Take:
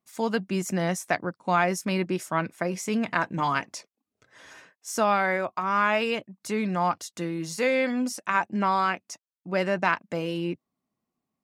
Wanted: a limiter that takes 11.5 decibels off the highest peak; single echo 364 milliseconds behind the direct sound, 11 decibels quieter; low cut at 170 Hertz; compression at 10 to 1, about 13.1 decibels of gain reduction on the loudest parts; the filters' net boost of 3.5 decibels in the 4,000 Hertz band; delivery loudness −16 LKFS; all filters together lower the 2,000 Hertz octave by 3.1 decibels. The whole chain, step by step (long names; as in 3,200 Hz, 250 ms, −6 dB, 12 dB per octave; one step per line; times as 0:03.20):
high-pass filter 170 Hz
parametric band 2,000 Hz −6 dB
parametric band 4,000 Hz +7.5 dB
downward compressor 10 to 1, threshold −33 dBFS
brickwall limiter −29 dBFS
single-tap delay 364 ms −11 dB
level +23.5 dB